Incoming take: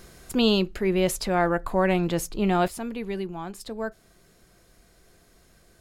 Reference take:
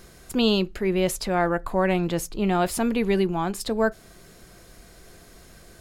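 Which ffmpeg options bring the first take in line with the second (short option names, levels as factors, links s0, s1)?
-af "asetnsamples=n=441:p=0,asendcmd='2.68 volume volume 9dB',volume=1"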